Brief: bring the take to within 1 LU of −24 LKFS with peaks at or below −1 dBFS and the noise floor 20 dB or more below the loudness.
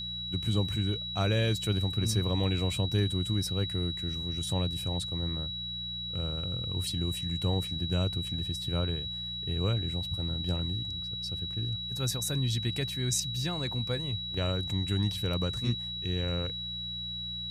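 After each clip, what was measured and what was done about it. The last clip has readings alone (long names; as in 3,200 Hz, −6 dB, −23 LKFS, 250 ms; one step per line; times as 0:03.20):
mains hum 60 Hz; hum harmonics up to 180 Hz; level of the hum −42 dBFS; interfering tone 3,900 Hz; level of the tone −35 dBFS; integrated loudness −31.0 LKFS; sample peak −16.0 dBFS; target loudness −24.0 LKFS
→ hum removal 60 Hz, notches 3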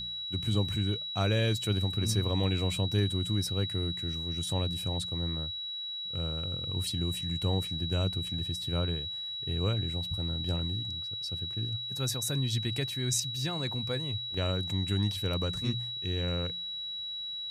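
mains hum none found; interfering tone 3,900 Hz; level of the tone −35 dBFS
→ notch filter 3,900 Hz, Q 30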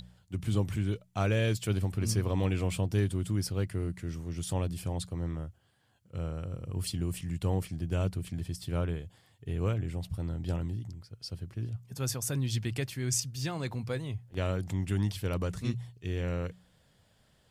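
interfering tone none found; integrated loudness −33.5 LKFS; sample peak −16.0 dBFS; target loudness −24.0 LKFS
→ level +9.5 dB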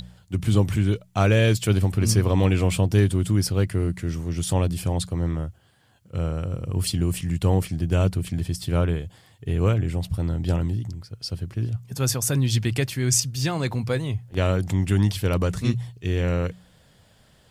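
integrated loudness −24.0 LKFS; sample peak −6.5 dBFS; background noise floor −57 dBFS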